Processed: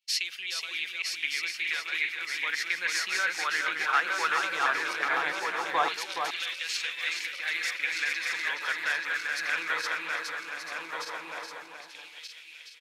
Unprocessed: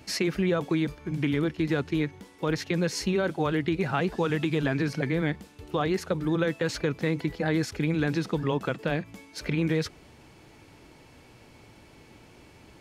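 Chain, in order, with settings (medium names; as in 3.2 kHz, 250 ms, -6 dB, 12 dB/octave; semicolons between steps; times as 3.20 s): backward echo that repeats 614 ms, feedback 72%, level -4 dB; expander -35 dBFS; LFO high-pass saw down 0.17 Hz 900–3200 Hz; on a send: delay 422 ms -6 dB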